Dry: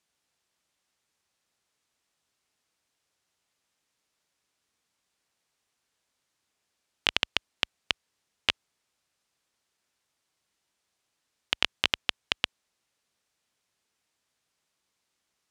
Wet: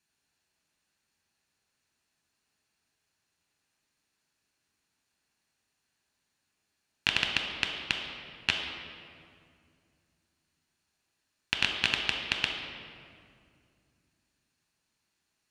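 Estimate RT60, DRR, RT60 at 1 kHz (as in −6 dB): 2.3 s, 2.0 dB, 2.1 s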